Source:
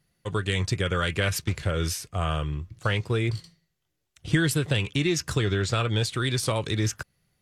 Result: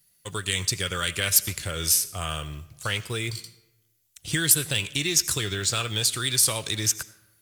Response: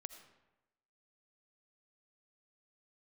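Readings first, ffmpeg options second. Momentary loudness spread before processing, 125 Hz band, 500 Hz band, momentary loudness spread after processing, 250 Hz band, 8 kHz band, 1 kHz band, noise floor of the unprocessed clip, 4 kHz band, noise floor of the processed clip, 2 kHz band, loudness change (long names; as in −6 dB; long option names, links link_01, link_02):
6 LU, −6.5 dB, −6.0 dB, 13 LU, −6.5 dB, +12.5 dB, −3.0 dB, −78 dBFS, +5.5 dB, −67 dBFS, 0.0 dB, +2.5 dB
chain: -filter_complex "[0:a]crystalizer=i=6.5:c=0,acrusher=bits=7:mode=log:mix=0:aa=0.000001,asplit=2[link_01][link_02];[1:a]atrim=start_sample=2205,highshelf=frequency=8400:gain=11[link_03];[link_02][link_03]afir=irnorm=-1:irlink=0,volume=0dB[link_04];[link_01][link_04]amix=inputs=2:normalize=0,volume=-10.5dB"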